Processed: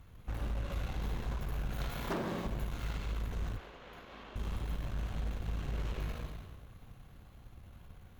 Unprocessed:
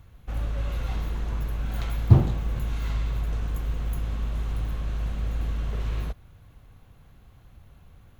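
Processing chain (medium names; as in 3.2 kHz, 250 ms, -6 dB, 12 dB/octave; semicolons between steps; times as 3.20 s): wavefolder -20 dBFS; 1.90–2.46 s: high-pass 210 Hz 12 dB/octave; Schroeder reverb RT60 1.4 s, combs from 31 ms, DRR 1.5 dB; compression, threshold -29 dBFS, peak gain reduction 7.5 dB; 3.56–4.36 s: three-band isolator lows -23 dB, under 280 Hz, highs -21 dB, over 5 kHz; Chebyshev shaper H 8 -21 dB, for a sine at -20.5 dBFS; flange 1.9 Hz, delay 4.1 ms, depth 9 ms, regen -64%; trim +1 dB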